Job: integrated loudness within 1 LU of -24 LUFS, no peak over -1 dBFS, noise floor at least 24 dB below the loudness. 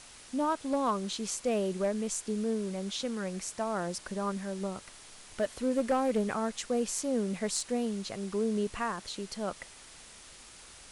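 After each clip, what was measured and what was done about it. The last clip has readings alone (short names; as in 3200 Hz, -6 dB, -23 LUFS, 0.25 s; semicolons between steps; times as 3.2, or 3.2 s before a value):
clipped 0.3%; flat tops at -21.5 dBFS; noise floor -52 dBFS; noise floor target -57 dBFS; loudness -32.5 LUFS; peak -21.5 dBFS; loudness target -24.0 LUFS
-> clip repair -21.5 dBFS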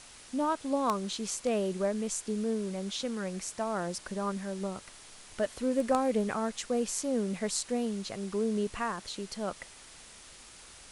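clipped 0.0%; noise floor -52 dBFS; noise floor target -57 dBFS
-> noise print and reduce 6 dB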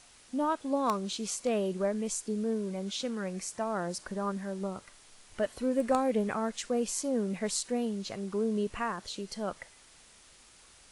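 noise floor -58 dBFS; loudness -32.5 LUFS; peak -12.5 dBFS; loudness target -24.0 LUFS
-> gain +8.5 dB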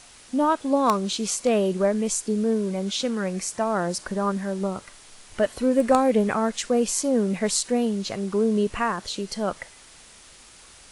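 loudness -24.0 LUFS; peak -4.0 dBFS; noise floor -49 dBFS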